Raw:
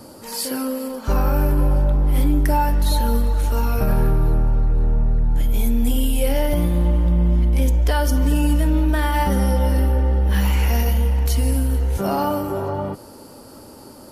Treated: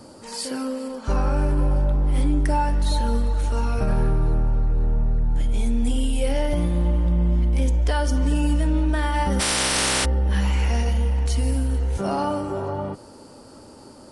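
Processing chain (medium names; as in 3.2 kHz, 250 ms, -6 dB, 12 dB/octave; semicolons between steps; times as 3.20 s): 9.39–10.04 s: spectral contrast reduction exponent 0.14; resampled via 22.05 kHz; trim -3 dB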